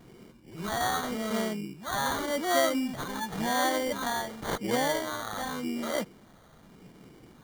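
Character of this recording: phasing stages 2, 0.89 Hz, lowest notch 330–2600 Hz; aliases and images of a low sample rate 2.6 kHz, jitter 0%

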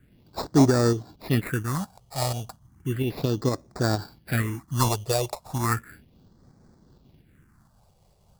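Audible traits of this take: aliases and images of a low sample rate 3.1 kHz, jitter 0%; phasing stages 4, 0.34 Hz, lowest notch 260–2800 Hz; tremolo saw up 4.3 Hz, depth 40%

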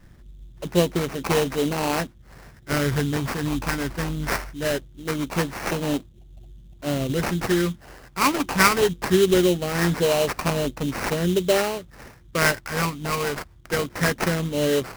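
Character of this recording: phasing stages 12, 0.21 Hz, lowest notch 640–1400 Hz; aliases and images of a low sample rate 3.5 kHz, jitter 20%

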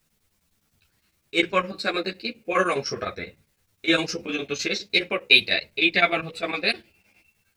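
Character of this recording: a quantiser's noise floor 12-bit, dither triangular; chopped level 9.8 Hz, depth 65%, duty 75%; a shimmering, thickened sound

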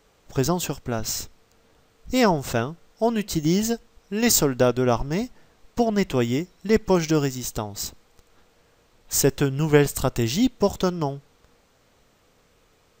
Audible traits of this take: noise floor -61 dBFS; spectral tilt -5.0 dB/octave

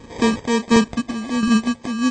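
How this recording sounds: phasing stages 8, 1.9 Hz, lowest notch 740–1900 Hz; aliases and images of a low sample rate 1.4 kHz, jitter 0%; chopped level 1.4 Hz, depth 60%, duty 55%; MP3

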